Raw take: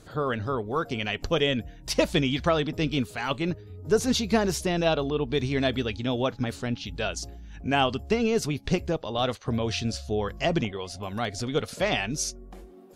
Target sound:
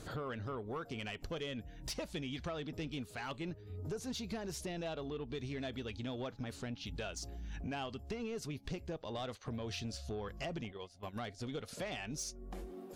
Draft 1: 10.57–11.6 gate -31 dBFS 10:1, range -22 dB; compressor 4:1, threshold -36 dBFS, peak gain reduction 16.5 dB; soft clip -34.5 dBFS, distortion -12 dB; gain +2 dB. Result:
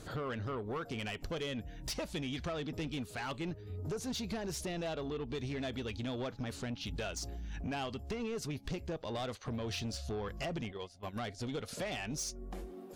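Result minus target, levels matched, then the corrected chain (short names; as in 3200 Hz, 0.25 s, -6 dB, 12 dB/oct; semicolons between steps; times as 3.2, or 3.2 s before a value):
compressor: peak gain reduction -4.5 dB
10.57–11.6 gate -31 dBFS 10:1, range -22 dB; compressor 4:1, threshold -42 dBFS, peak gain reduction 21 dB; soft clip -34.5 dBFS, distortion -18 dB; gain +2 dB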